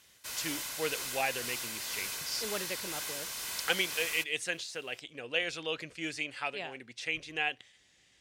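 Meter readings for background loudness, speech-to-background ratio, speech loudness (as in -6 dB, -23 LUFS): -36.5 LUFS, 1.0 dB, -35.5 LUFS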